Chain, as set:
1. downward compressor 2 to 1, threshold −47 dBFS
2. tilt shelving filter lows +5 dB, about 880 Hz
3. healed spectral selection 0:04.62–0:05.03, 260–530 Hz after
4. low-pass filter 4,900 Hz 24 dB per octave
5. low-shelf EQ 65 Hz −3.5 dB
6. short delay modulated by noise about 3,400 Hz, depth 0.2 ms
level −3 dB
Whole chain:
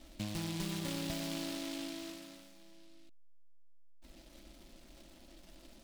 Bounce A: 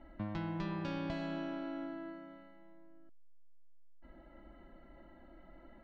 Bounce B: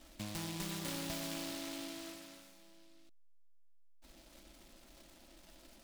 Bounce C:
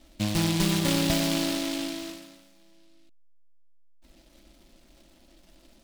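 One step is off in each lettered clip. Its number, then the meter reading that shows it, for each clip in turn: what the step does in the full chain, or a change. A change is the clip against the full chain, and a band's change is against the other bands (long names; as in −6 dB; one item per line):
6, 4 kHz band −12.0 dB
2, 125 Hz band −3.5 dB
1, average gain reduction 4.5 dB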